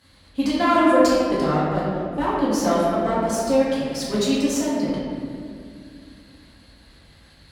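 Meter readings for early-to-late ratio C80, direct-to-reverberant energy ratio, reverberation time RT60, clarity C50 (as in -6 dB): 0.0 dB, -9.0 dB, 2.4 s, -1.5 dB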